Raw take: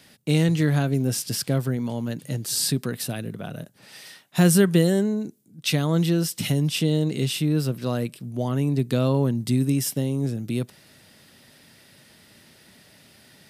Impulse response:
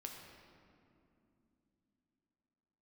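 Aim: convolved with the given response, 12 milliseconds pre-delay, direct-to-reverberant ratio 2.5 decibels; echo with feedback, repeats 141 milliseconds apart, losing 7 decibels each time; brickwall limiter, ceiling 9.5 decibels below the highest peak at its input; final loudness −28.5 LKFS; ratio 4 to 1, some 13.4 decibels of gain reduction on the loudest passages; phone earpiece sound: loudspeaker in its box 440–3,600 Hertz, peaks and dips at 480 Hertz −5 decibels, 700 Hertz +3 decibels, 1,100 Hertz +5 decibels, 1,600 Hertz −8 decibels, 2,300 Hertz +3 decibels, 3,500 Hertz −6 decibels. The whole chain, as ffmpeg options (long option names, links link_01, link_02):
-filter_complex "[0:a]acompressor=threshold=-29dB:ratio=4,alimiter=level_in=1.5dB:limit=-24dB:level=0:latency=1,volume=-1.5dB,aecho=1:1:141|282|423|564|705:0.447|0.201|0.0905|0.0407|0.0183,asplit=2[link_01][link_02];[1:a]atrim=start_sample=2205,adelay=12[link_03];[link_02][link_03]afir=irnorm=-1:irlink=0,volume=1dB[link_04];[link_01][link_04]amix=inputs=2:normalize=0,highpass=440,equalizer=frequency=480:width_type=q:width=4:gain=-5,equalizer=frequency=700:width_type=q:width=4:gain=3,equalizer=frequency=1100:width_type=q:width=4:gain=5,equalizer=frequency=1600:width_type=q:width=4:gain=-8,equalizer=frequency=2300:width_type=q:width=4:gain=3,equalizer=frequency=3500:width_type=q:width=4:gain=-6,lowpass=frequency=3600:width=0.5412,lowpass=frequency=3600:width=1.3066,volume=12.5dB"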